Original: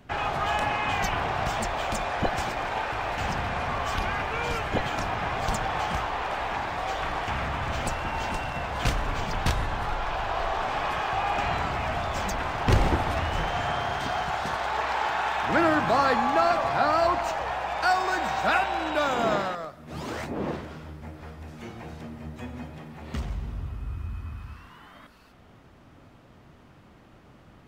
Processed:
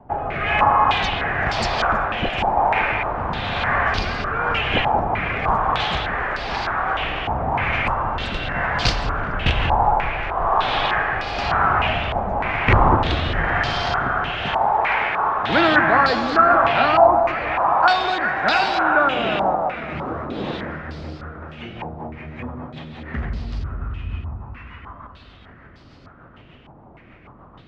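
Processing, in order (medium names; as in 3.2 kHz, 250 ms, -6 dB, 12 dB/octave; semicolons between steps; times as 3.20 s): rotary cabinet horn 1 Hz, later 6.7 Hz, at 21.26 s; on a send: echo whose repeats swap between lows and highs 191 ms, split 1.2 kHz, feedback 75%, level -7.5 dB; on the sum: step-sequenced low-pass 3.3 Hz 860–4700 Hz; trim +6 dB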